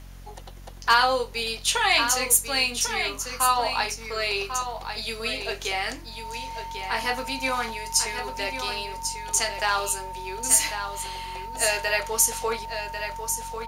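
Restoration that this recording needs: clip repair -8.5 dBFS; de-hum 45.2 Hz, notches 6; notch 910 Hz, Q 30; inverse comb 1.095 s -8 dB

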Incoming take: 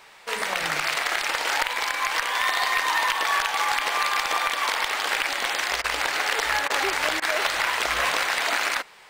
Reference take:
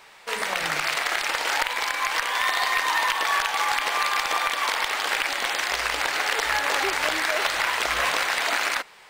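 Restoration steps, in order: interpolate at 5.82/6.68/7.2, 20 ms

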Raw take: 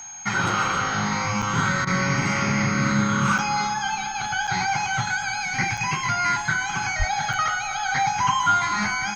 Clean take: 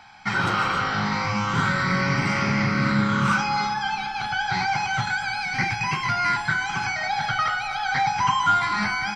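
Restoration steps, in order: notch 6500 Hz, Q 30; 6.98–7.1 HPF 140 Hz 24 dB/oct; interpolate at 1.42/3.38/4.47/5.77/7.33, 5.6 ms; interpolate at 1.85, 19 ms

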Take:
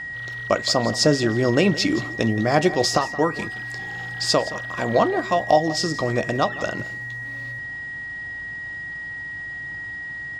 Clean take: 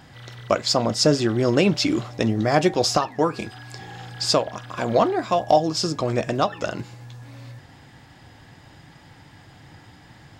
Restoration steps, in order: de-hum 50.1 Hz, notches 5; notch 1900 Hz, Q 30; inverse comb 0.171 s -16.5 dB

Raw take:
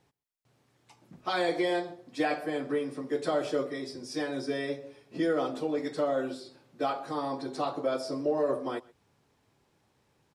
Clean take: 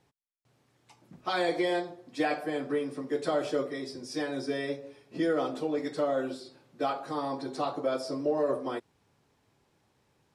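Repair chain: inverse comb 0.127 s -23.5 dB

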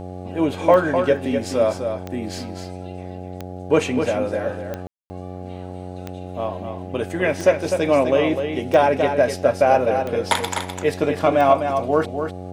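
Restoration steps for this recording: de-click; de-hum 91.4 Hz, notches 9; room tone fill 4.87–5.1; inverse comb 0.253 s -7 dB

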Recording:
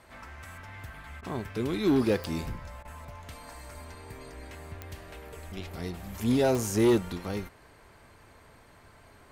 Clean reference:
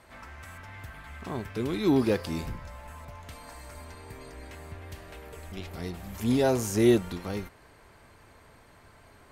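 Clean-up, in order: clip repair -17.5 dBFS; de-click; interpolate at 1.21/2.83, 18 ms

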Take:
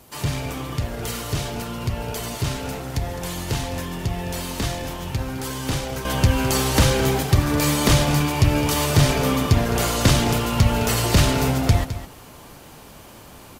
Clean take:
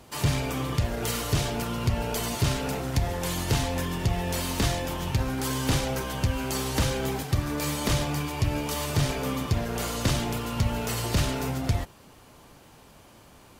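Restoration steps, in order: expander -35 dBFS, range -21 dB; inverse comb 0.211 s -12.5 dB; gain correction -8.5 dB, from 6.05

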